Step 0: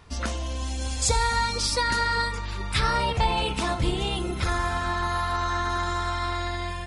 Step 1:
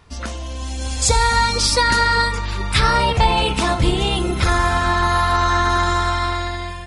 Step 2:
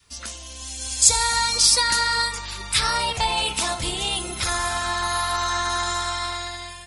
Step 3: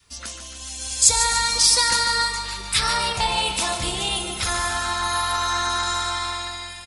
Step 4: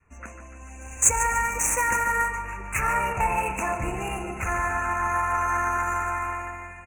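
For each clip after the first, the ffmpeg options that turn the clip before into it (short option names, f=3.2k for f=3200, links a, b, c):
-af "dynaudnorm=f=270:g=7:m=9dB,volume=1dB"
-af "adynamicequalizer=threshold=0.0316:dfrequency=760:dqfactor=1.4:tfrequency=760:tqfactor=1.4:attack=5:release=100:ratio=0.375:range=2.5:mode=boostabove:tftype=bell,crystalizer=i=8.5:c=0,volume=-14.5dB"
-af "aecho=1:1:147|294|441|588|735|882:0.355|0.185|0.0959|0.0499|0.0259|0.0135"
-af "adynamicsmooth=sensitivity=1.5:basefreq=2.6k,asuperstop=centerf=4100:order=20:qfactor=1.2"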